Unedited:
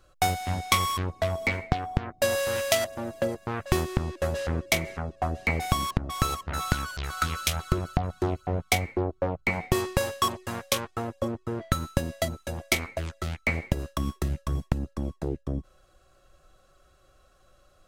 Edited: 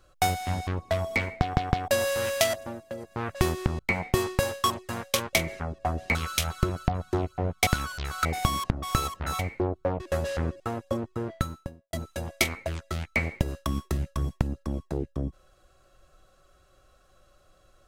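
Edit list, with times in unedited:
0.67–0.98 cut
1.71 stutter in place 0.16 s, 3 plays
2.91–3.52 dip -10 dB, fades 0.24 s
4.1–4.7 swap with 9.37–10.91
5.52–6.66 swap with 7.24–8.76
11.48–12.24 studio fade out

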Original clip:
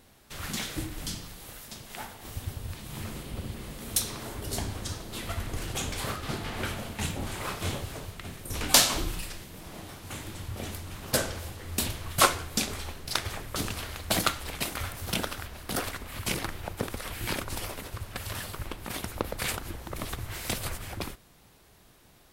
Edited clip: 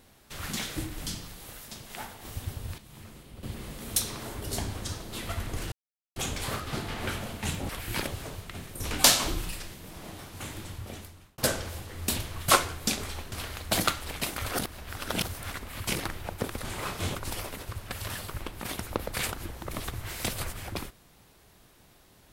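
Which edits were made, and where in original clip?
2.78–3.43 gain -10 dB
5.72 insert silence 0.44 s
7.25–7.77 swap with 17.02–17.4
10.31–11.08 fade out
13.02–13.71 cut
14.85–15.89 reverse

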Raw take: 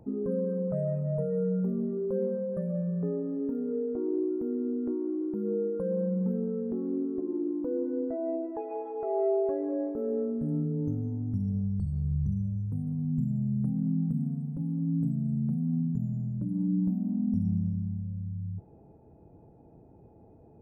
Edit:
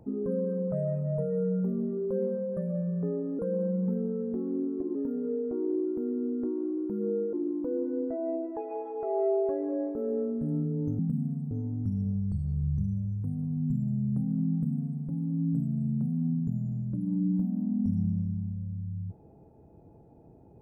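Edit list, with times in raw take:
5.77–7.33 move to 3.39
14–14.52 copy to 10.99

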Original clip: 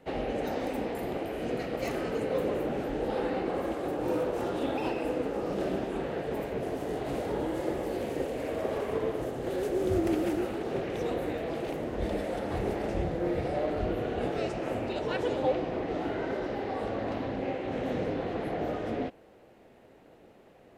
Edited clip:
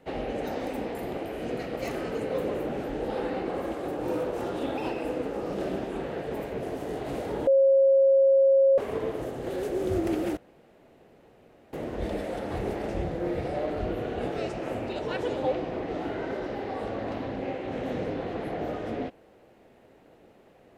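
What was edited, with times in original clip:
7.47–8.78 bleep 542 Hz -16 dBFS
10.37–11.73 room tone

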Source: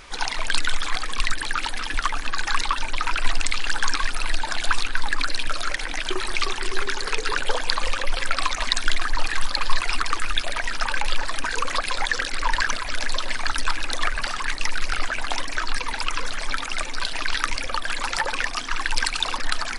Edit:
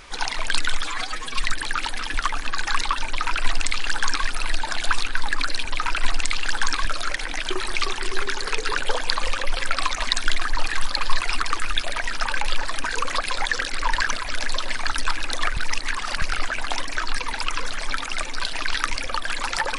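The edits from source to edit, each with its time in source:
0.84–1.24 stretch 1.5×
2.86–4.06 copy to 5.45
14.17–14.82 reverse

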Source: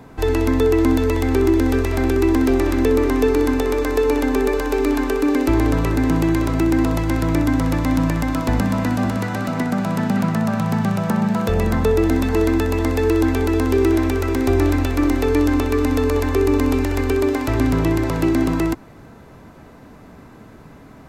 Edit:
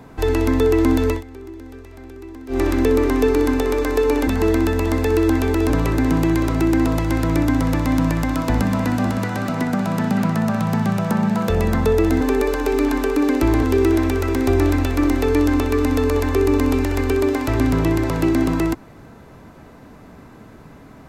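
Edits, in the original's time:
1.1–2.61 dip -20 dB, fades 0.13 s
4.27–5.69 swap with 12.2–13.63

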